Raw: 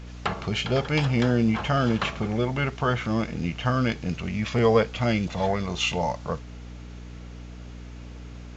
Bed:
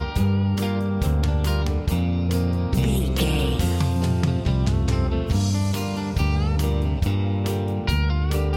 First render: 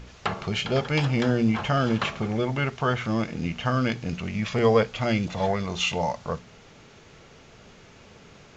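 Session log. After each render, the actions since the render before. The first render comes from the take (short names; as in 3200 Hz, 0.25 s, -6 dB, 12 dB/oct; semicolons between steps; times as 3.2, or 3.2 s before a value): de-hum 60 Hz, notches 5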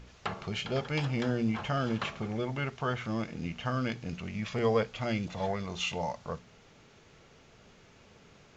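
gain -7.5 dB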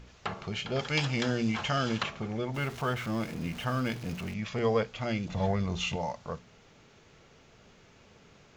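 0.79–2.03 high shelf 2100 Hz +11 dB; 2.54–4.34 zero-crossing step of -40.5 dBFS; 5.29–5.96 low shelf 220 Hz +11.5 dB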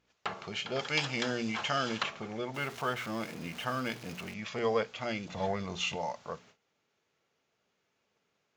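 HPF 380 Hz 6 dB/oct; gate -56 dBFS, range -18 dB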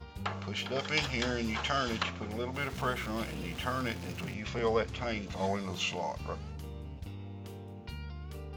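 add bed -21 dB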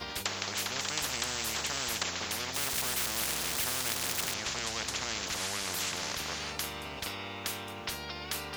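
spectral compressor 10:1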